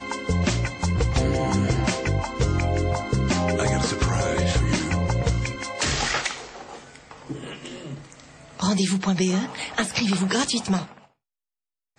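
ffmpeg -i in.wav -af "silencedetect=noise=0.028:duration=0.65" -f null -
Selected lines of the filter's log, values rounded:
silence_start: 10.85
silence_end: 11.99 | silence_duration: 1.14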